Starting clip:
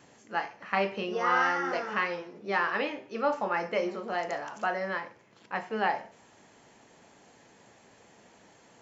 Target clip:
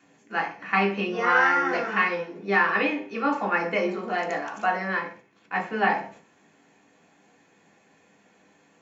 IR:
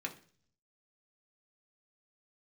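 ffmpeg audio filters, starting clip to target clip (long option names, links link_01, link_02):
-filter_complex "[0:a]agate=range=-8dB:threshold=-53dB:ratio=16:detection=peak[link_01];[1:a]atrim=start_sample=2205,atrim=end_sample=6174[link_02];[link_01][link_02]afir=irnorm=-1:irlink=0,volume=5.5dB"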